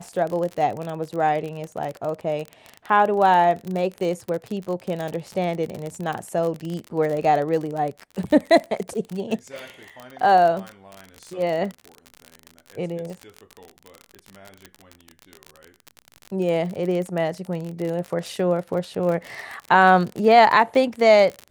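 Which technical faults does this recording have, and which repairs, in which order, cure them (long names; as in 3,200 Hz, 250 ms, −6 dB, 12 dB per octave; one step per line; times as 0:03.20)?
surface crackle 42 per second −26 dBFS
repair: click removal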